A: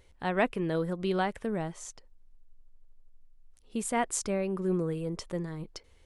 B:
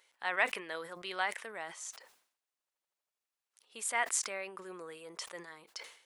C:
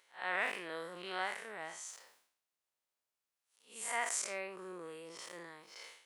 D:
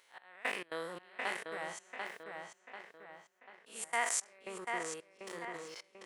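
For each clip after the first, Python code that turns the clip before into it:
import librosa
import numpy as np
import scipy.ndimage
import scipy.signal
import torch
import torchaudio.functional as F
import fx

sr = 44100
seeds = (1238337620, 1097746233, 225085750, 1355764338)

y1 = scipy.signal.sosfilt(scipy.signal.butter(2, 1000.0, 'highpass', fs=sr, output='sos'), x)
y1 = fx.dynamic_eq(y1, sr, hz=2000.0, q=3.6, threshold_db=-54.0, ratio=4.0, max_db=5)
y1 = fx.sustainer(y1, sr, db_per_s=100.0)
y2 = fx.spec_blur(y1, sr, span_ms=130.0)
y2 = y2 * 10.0 ** (1.0 / 20.0)
y3 = fx.step_gate(y2, sr, bpm=168, pattern='xx...xx.x', floor_db=-24.0, edge_ms=4.5)
y3 = fx.echo_filtered(y3, sr, ms=741, feedback_pct=46, hz=4200.0, wet_db=-4)
y3 = y3 * 10.0 ** (3.0 / 20.0)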